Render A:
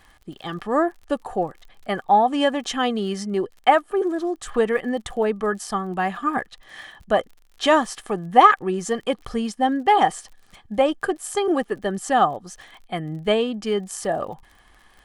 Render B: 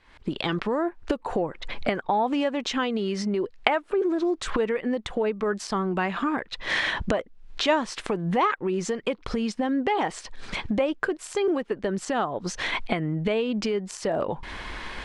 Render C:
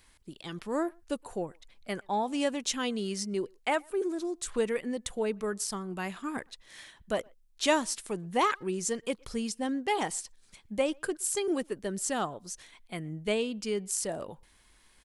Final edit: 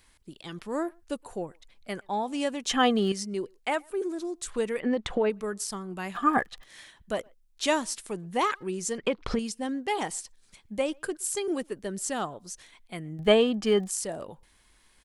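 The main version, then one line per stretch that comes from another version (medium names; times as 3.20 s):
C
2.69–3.12 s: from A
4.80–5.30 s: from B
6.15–6.64 s: from A
8.98–9.39 s: from B
13.19–13.90 s: from A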